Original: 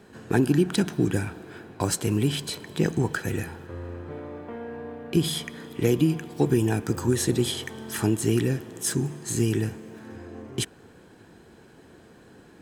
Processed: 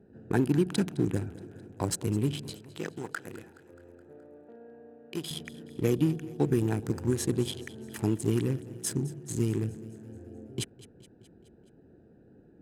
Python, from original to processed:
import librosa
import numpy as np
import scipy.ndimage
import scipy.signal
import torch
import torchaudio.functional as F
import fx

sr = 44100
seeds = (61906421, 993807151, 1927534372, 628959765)

y = fx.wiener(x, sr, points=41)
y = fx.highpass(y, sr, hz=740.0, slope=6, at=(2.57, 5.31))
y = fx.echo_feedback(y, sr, ms=211, feedback_pct=60, wet_db=-18.5)
y = y * librosa.db_to_amplitude(-4.0)